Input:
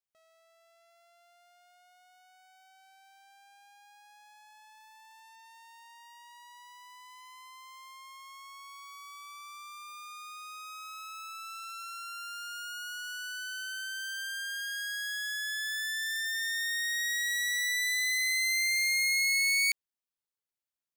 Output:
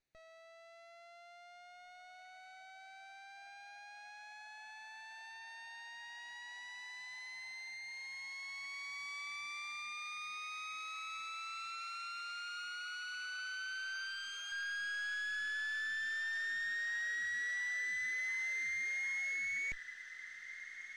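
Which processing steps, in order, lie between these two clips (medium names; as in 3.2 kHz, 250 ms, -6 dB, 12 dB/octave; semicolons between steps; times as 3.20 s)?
comb filter that takes the minimum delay 0.47 ms; 13.93–14.52 s: comb 4.7 ms, depth 69%; hard clipper -37 dBFS, distortion -5 dB; peak limiter -47.5 dBFS, peak gain reduction 10.5 dB; distance through air 130 m; echo that smears into a reverb 1894 ms, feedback 63%, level -13 dB; trim +11.5 dB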